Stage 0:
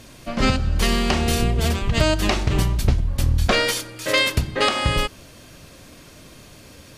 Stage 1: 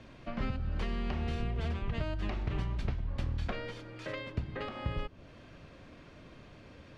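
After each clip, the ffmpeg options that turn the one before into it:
-filter_complex "[0:a]lowpass=2600,acrossover=split=180|840[s0][s1][s2];[s0]acompressor=threshold=0.0562:ratio=4[s3];[s1]acompressor=threshold=0.0158:ratio=4[s4];[s2]acompressor=threshold=0.0126:ratio=4[s5];[s3][s4][s5]amix=inputs=3:normalize=0,volume=0.447"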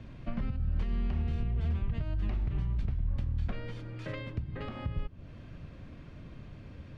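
-af "bass=f=250:g=12,treble=f=4000:g=-8,alimiter=limit=0.0891:level=0:latency=1:release=331,highshelf=f=5100:g=7.5,volume=0.75"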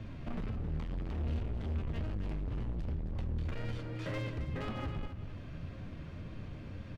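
-af "asoftclip=type=hard:threshold=0.015,flanger=delay=9.2:depth=4:regen=59:speed=1.9:shape=sinusoidal,aecho=1:1:267:0.299,volume=2.11"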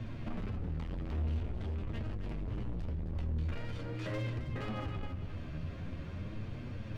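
-af "alimiter=level_in=3.35:limit=0.0631:level=0:latency=1:release=24,volume=0.299,areverse,acompressor=mode=upward:threshold=0.00794:ratio=2.5,areverse,flanger=delay=8.1:depth=5:regen=46:speed=0.45:shape=triangular,volume=2.11"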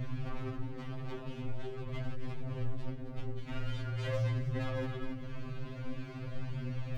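-af "afftfilt=real='re*2.45*eq(mod(b,6),0)':imag='im*2.45*eq(mod(b,6),0)':win_size=2048:overlap=0.75,volume=1.78"

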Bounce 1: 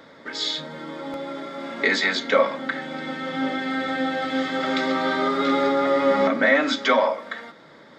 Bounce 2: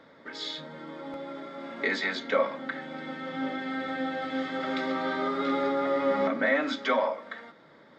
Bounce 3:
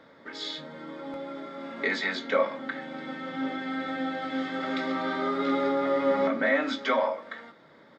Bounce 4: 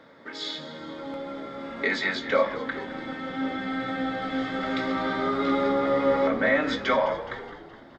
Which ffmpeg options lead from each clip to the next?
-af "lowpass=f=3400:p=1,volume=0.473"
-filter_complex "[0:a]asplit=2[s0][s1];[s1]adelay=22,volume=0.282[s2];[s0][s2]amix=inputs=2:normalize=0"
-filter_complex "[0:a]asplit=7[s0][s1][s2][s3][s4][s5][s6];[s1]adelay=210,afreqshift=-71,volume=0.2[s7];[s2]adelay=420,afreqshift=-142,volume=0.112[s8];[s3]adelay=630,afreqshift=-213,volume=0.0624[s9];[s4]adelay=840,afreqshift=-284,volume=0.0351[s10];[s5]adelay=1050,afreqshift=-355,volume=0.0197[s11];[s6]adelay=1260,afreqshift=-426,volume=0.011[s12];[s0][s7][s8][s9][s10][s11][s12]amix=inputs=7:normalize=0,volume=1.26"

